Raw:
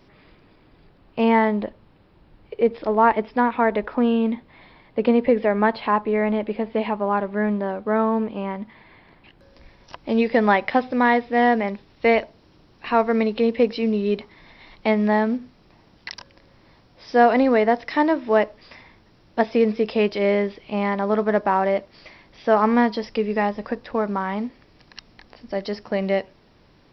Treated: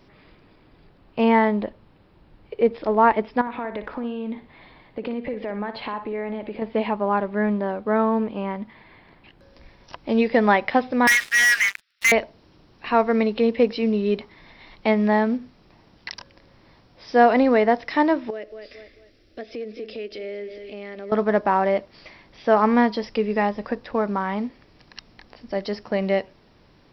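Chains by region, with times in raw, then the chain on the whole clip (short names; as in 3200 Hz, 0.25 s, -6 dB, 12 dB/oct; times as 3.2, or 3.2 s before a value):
3.41–6.62 notch 5200 Hz, Q 18 + compressor 4:1, threshold -27 dBFS + flutter echo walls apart 10.1 m, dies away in 0.33 s
11.07–12.12 steep high-pass 1300 Hz 72 dB/oct + sample leveller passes 5
18.3–21.12 fixed phaser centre 390 Hz, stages 4 + feedback echo 0.22 s, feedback 34%, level -15.5 dB + compressor 2.5:1, threshold -35 dBFS
whole clip: dry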